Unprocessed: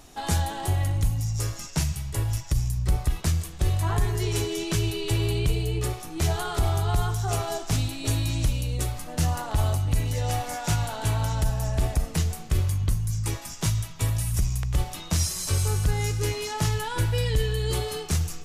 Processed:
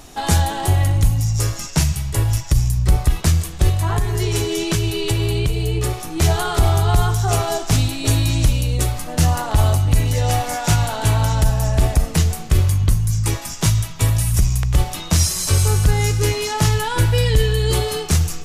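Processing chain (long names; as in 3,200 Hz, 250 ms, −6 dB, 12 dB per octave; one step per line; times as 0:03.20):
0:03.69–0:06.11: downward compressor 4 to 1, threshold −24 dBFS, peak gain reduction 6 dB
level +8.5 dB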